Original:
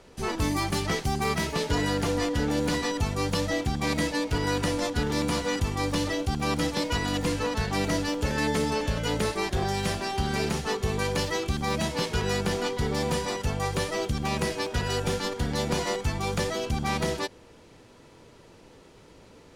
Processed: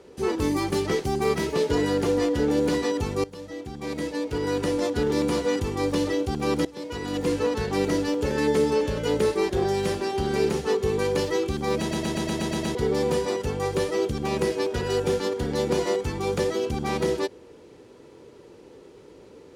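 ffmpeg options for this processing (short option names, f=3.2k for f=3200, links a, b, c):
-filter_complex "[0:a]asplit=11[a][b][c][d][e][f][g][h][i][j][k];[a]atrim=end=3.24,asetpts=PTS-STARTPTS,afade=t=out:st=3.236:d=0.004:c=hsin:silence=0.105925[l];[b]atrim=start=3.24:end=6.65,asetpts=PTS-STARTPTS,afade=t=in:d=1.69:silence=0.105925,afade=t=out:st=3.406:d=0.004:c=hsin:silence=0.0944061[m];[c]atrim=start=6.65:end=11.912,asetpts=PTS-STARTPTS,afade=t=in:d=0.69:silence=0.0944061[n];[d]atrim=start=11.788:end=11.912[o];[e]atrim=start=11.788:end=11.912[p];[f]atrim=start=11.788:end=11.912[q];[g]atrim=start=11.788:end=11.912[r];[h]atrim=start=11.788:end=11.912[s];[i]atrim=start=11.788:end=11.912[t];[j]atrim=start=11.788:end=11.912[u];[k]atrim=start=12.748[v];[l][m][n]concat=n=3:v=0:a=1[w];[w][o]acrossfade=d=0.004:c1=hsin:c2=hsin[x];[x][p]acrossfade=d=0.004:c1=hsin:c2=hsin[y];[y][q]acrossfade=d=0.004:c1=hsin:c2=hsin[z];[z][r]acrossfade=d=0.004:c1=hsin:c2=hsin[aa];[aa][s]acrossfade=d=0.004:c1=hsin:c2=hsin[ab];[ab][t]acrossfade=d=0.004:c1=hsin:c2=hsin[ac];[ac][u]acrossfade=d=0.004:c1=hsin:c2=hsin[ad];[ad][v]acrossfade=d=0.004:c1=hsin:c2=hsin,highpass=42,equalizer=f=400:w=1.3:g=11.5,bandreject=f=660:w=14,volume=-2.5dB"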